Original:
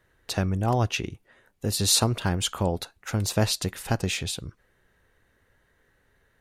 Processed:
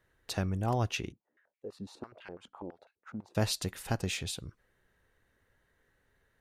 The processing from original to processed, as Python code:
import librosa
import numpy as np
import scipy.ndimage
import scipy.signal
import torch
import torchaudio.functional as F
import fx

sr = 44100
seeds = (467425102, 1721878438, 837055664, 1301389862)

y = fx.filter_held_bandpass(x, sr, hz=12.0, low_hz=230.0, high_hz=2300.0, at=(1.12, 3.35))
y = y * 10.0 ** (-6.5 / 20.0)